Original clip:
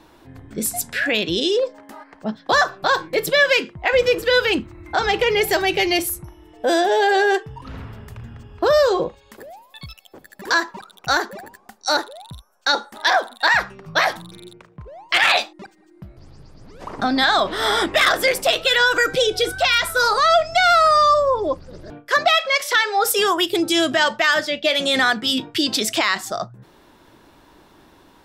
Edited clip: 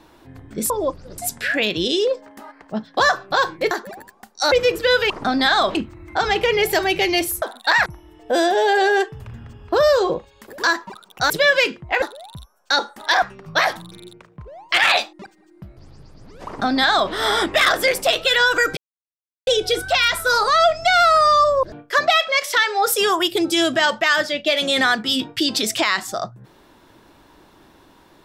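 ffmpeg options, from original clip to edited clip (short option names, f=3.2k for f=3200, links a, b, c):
-filter_complex "[0:a]asplit=16[a][b][c][d][e][f][g][h][i][j][k][l][m][n][o][p];[a]atrim=end=0.702[q];[b]atrim=start=21.328:end=21.812[r];[c]atrim=start=0.698:end=3.232[s];[d]atrim=start=11.168:end=11.982[t];[e]atrim=start=3.948:end=4.532[u];[f]atrim=start=16.868:end=17.522[v];[g]atrim=start=4.528:end=6.202[w];[h]atrim=start=13.178:end=13.622[x];[i]atrim=start=6.198:end=7.542[y];[j]atrim=start=8.098:end=9.482[z];[k]atrim=start=10.448:end=11.172[aa];[l]atrim=start=3.228:end=3.952[ab];[m]atrim=start=11.978:end=13.182[ac];[n]atrim=start=13.618:end=19.17,asetpts=PTS-STARTPTS,afade=t=out:st=5.548:d=0.004:c=hsin,apad=pad_dur=0.7[ad];[o]atrim=start=19.17:end=21.332,asetpts=PTS-STARTPTS,afade=t=in:d=0.004:c=hsin[ae];[p]atrim=start=21.808[af];[q][r]acrossfade=d=0.004:c1=hsin:c2=hsin[ag];[ag][s]acrossfade=d=0.004:c1=hsin:c2=hsin[ah];[ah][t]acrossfade=d=0.004:c1=hsin:c2=hsin[ai];[ai][u]acrossfade=d=0.004:c1=hsin:c2=hsin[aj];[aj][v]acrossfade=d=0.004:c1=hsin:c2=hsin[ak];[ak][w]acrossfade=d=0.004:c1=hsin:c2=hsin[al];[al][x]acrossfade=d=0.004:c1=hsin:c2=hsin[am];[am][y]acrossfade=d=0.004:c1=hsin:c2=hsin[an];[an][z]acrossfade=d=0.004:c1=hsin:c2=hsin[ao];[ao][aa]acrossfade=d=0.004:c1=hsin:c2=hsin[ap];[ap][ab]acrossfade=d=0.004:c1=hsin:c2=hsin[aq];[aq][ac]acrossfade=d=0.004:c1=hsin:c2=hsin[ar];[ad][ae]concat=n=2:v=0:a=1[as];[ar][as]acrossfade=d=0.004:c1=hsin:c2=hsin[at];[at][af]acrossfade=d=0.004:c1=hsin:c2=hsin"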